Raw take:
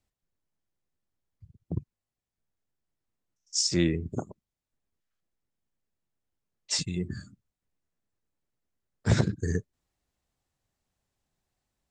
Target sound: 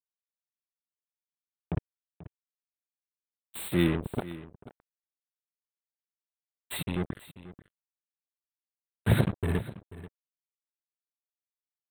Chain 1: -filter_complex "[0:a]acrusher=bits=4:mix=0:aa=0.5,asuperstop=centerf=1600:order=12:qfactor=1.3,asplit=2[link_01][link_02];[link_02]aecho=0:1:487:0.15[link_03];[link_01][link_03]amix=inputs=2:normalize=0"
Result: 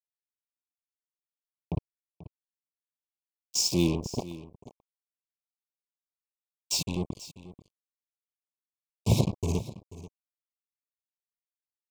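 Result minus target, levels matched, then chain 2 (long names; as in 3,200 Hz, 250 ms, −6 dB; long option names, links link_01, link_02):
8,000 Hz band +11.5 dB
-filter_complex "[0:a]acrusher=bits=4:mix=0:aa=0.5,asuperstop=centerf=5800:order=12:qfactor=1.3,asplit=2[link_01][link_02];[link_02]aecho=0:1:487:0.15[link_03];[link_01][link_03]amix=inputs=2:normalize=0"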